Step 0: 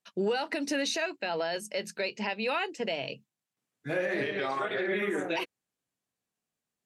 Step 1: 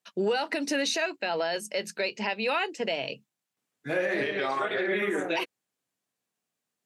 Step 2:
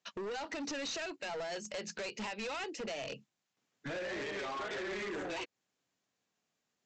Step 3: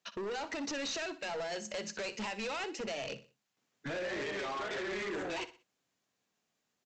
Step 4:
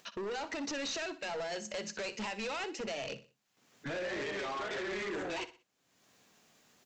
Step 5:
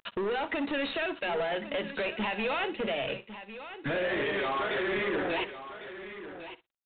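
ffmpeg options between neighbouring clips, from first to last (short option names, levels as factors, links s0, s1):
-af "highpass=f=180:p=1,volume=1.41"
-af "acompressor=threshold=0.02:ratio=6,aresample=16000,asoftclip=type=hard:threshold=0.0106,aresample=44100,volume=1.33"
-af "aecho=1:1:61|122|183:0.188|0.0678|0.0244,volume=1.19"
-af "acompressor=mode=upward:threshold=0.00282:ratio=2.5"
-af "aresample=8000,aeval=exprs='sgn(val(0))*max(abs(val(0))-0.00119,0)':c=same,aresample=44100,aecho=1:1:1102:0.237,volume=2.51"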